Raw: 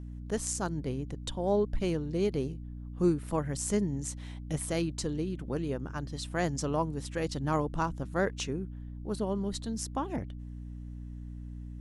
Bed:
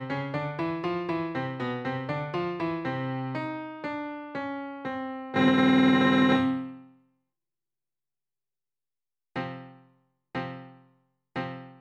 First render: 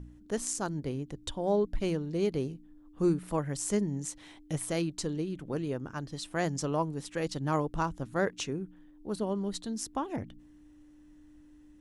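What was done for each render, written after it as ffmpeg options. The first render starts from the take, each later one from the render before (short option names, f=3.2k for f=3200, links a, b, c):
-af "bandreject=f=60:t=h:w=4,bandreject=f=120:t=h:w=4,bandreject=f=180:t=h:w=4,bandreject=f=240:t=h:w=4"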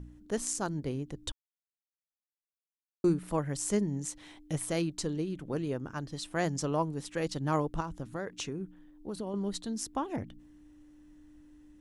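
-filter_complex "[0:a]asettb=1/sr,asplit=3[a][b][c];[a]atrim=end=7.804[d];[b]atrim=start=7.8:end=9.34,asetpts=PTS-STARTPTS,afade=t=in:d=0.004:c=qsin,afade=t=out:st=1.536:d=0.004:c=qsin,acompressor=threshold=-32dB:ratio=6:attack=3.2:release=140:knee=1:detection=peak[e];[c]atrim=start=9.336[f];[d][e]acrossfade=d=0.004:c1=hsin:c2=qsin[g];[g][f]acrossfade=d=0.004:c1=qsin:c2=hsin,asplit=3[h][i][j];[h]atrim=end=1.32,asetpts=PTS-STARTPTS,afade=t=out:st=1.316:d=0.004:c=hsin[k];[i]atrim=start=1.32:end=3.04,asetpts=PTS-STARTPTS,volume=0[l];[j]atrim=start=3.04,asetpts=PTS-STARTPTS,afade=t=in:d=0.004:c=hsin[m];[k][l][m]concat=n=3:v=0:a=1"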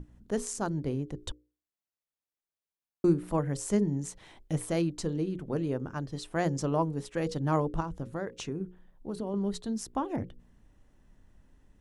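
-af "tiltshelf=f=1.4k:g=3.5,bandreject=f=60:t=h:w=6,bandreject=f=120:t=h:w=6,bandreject=f=180:t=h:w=6,bandreject=f=240:t=h:w=6,bandreject=f=300:t=h:w=6,bandreject=f=360:t=h:w=6,bandreject=f=420:t=h:w=6,bandreject=f=480:t=h:w=6,bandreject=f=540:t=h:w=6"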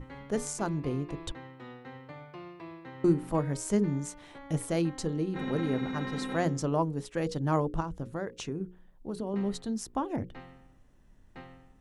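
-filter_complex "[1:a]volume=-15dB[a];[0:a][a]amix=inputs=2:normalize=0"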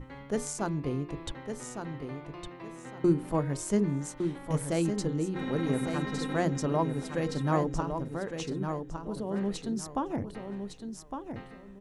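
-af "aecho=1:1:1159|2318|3477:0.447|0.107|0.0257"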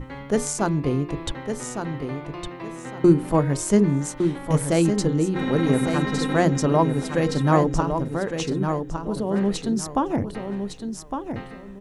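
-af "volume=9dB"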